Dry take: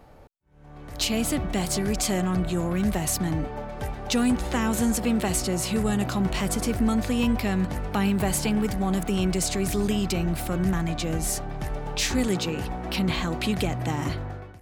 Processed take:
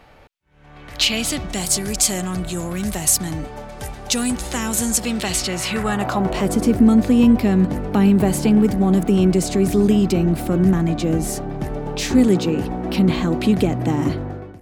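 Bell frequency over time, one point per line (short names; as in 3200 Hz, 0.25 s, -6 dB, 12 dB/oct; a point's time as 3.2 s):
bell +12 dB 2.2 oct
1.02 s 2600 Hz
1.63 s 8800 Hz
4.85 s 8800 Hz
5.81 s 1600 Hz
6.59 s 280 Hz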